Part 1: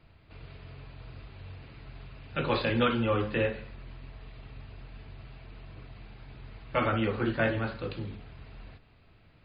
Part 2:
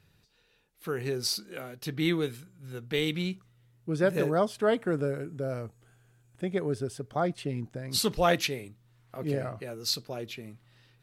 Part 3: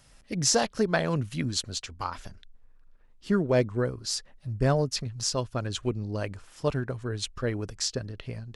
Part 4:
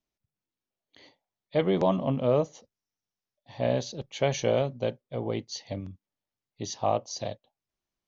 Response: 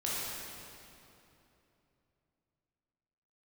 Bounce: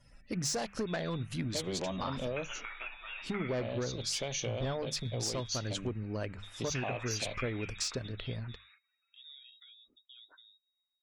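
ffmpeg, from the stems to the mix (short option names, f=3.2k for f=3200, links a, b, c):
-filter_complex "[0:a]flanger=delay=7.3:depth=7:regen=68:speed=0.27:shape=sinusoidal,highpass=f=1.5k:t=q:w=2,volume=-1.5dB[a];[1:a]acompressor=threshold=-35dB:ratio=3,volume=-16.5dB[b];[2:a]volume=0dB[c];[3:a]acompressor=threshold=-34dB:ratio=2,aexciter=amount=2.1:drive=5.4:freq=2.2k,volume=0dB[d];[c][d]amix=inputs=2:normalize=0,asoftclip=type=tanh:threshold=-21.5dB,acompressor=threshold=-32dB:ratio=6,volume=0dB[e];[a][b]amix=inputs=2:normalize=0,lowpass=f=3.3k:t=q:w=0.5098,lowpass=f=3.3k:t=q:w=0.6013,lowpass=f=3.3k:t=q:w=0.9,lowpass=f=3.3k:t=q:w=2.563,afreqshift=-3900,acompressor=threshold=-40dB:ratio=8,volume=0dB[f];[e][f]amix=inputs=2:normalize=0,bandreject=f=50:t=h:w=6,bandreject=f=100:t=h:w=6,bandreject=f=150:t=h:w=6,bandreject=f=200:t=h:w=6,afftdn=nr=22:nf=-61"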